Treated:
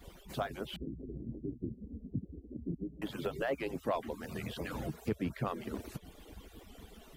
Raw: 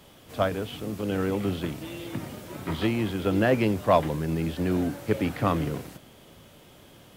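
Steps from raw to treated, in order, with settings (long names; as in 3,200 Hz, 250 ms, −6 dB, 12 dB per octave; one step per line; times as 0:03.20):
harmonic-percussive split with one part muted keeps percussive
low-shelf EQ 190 Hz +12 dB
downward compressor 2.5 to 1, threshold −37 dBFS, peak gain reduction 14.5 dB
0:00.76–0:03.02: inverse Chebyshev low-pass filter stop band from 1,200 Hz, stop band 60 dB
wow of a warped record 78 rpm, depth 100 cents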